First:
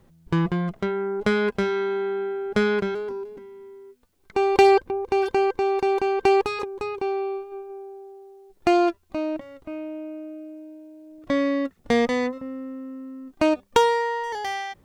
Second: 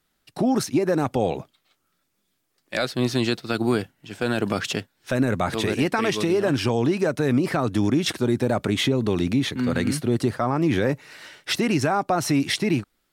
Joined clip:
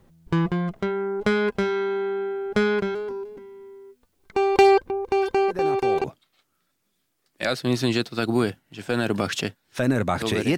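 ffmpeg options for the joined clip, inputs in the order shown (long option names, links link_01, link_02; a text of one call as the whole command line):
ffmpeg -i cue0.wav -i cue1.wav -filter_complex "[1:a]asplit=2[link_01][link_02];[0:a]apad=whole_dur=10.57,atrim=end=10.57,atrim=end=6.042[link_03];[link_02]atrim=start=1.358:end=5.89[link_04];[link_01]atrim=start=0.8:end=1.36,asetpts=PTS-STARTPTS,volume=-10.5dB,afade=type=in:duration=0.004:curve=hsin,afade=type=out:start_time=0.556:duration=0.004:curve=hsin,adelay=5480[link_05];[link_03][link_04]acrossfade=duration=0.004:curve1=hsin:curve2=hsin[link_06];[link_06][link_05]amix=inputs=2:normalize=0" out.wav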